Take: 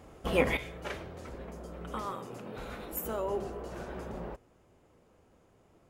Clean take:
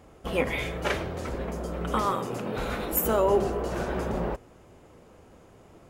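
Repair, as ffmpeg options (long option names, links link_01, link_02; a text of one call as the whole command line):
ffmpeg -i in.wav -af "asetnsamples=nb_out_samples=441:pad=0,asendcmd='0.57 volume volume 11dB',volume=0dB" out.wav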